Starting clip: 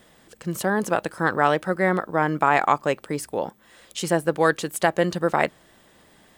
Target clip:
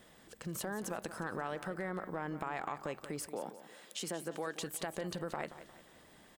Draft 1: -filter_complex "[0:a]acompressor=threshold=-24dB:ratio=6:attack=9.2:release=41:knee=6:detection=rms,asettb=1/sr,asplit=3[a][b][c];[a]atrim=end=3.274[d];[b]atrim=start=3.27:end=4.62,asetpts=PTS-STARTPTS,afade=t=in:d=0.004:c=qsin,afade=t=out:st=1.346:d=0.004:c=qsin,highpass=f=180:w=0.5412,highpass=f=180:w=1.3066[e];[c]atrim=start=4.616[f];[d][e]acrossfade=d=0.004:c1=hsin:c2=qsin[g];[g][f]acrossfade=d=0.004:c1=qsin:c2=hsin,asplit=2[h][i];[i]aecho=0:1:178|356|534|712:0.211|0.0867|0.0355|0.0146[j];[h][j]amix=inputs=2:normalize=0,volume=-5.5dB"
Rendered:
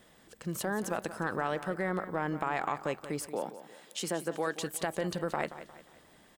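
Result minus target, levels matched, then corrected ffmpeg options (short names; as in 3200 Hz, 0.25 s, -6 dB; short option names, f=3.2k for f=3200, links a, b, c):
compressor: peak gain reduction -7 dB
-filter_complex "[0:a]acompressor=threshold=-32.5dB:ratio=6:attack=9.2:release=41:knee=6:detection=rms,asettb=1/sr,asplit=3[a][b][c];[a]atrim=end=3.274[d];[b]atrim=start=3.27:end=4.62,asetpts=PTS-STARTPTS,afade=t=in:d=0.004:c=qsin,afade=t=out:st=1.346:d=0.004:c=qsin,highpass=f=180:w=0.5412,highpass=f=180:w=1.3066[e];[c]atrim=start=4.616[f];[d][e]acrossfade=d=0.004:c1=hsin:c2=qsin[g];[g][f]acrossfade=d=0.004:c1=qsin:c2=hsin,asplit=2[h][i];[i]aecho=0:1:178|356|534|712:0.211|0.0867|0.0355|0.0146[j];[h][j]amix=inputs=2:normalize=0,volume=-5.5dB"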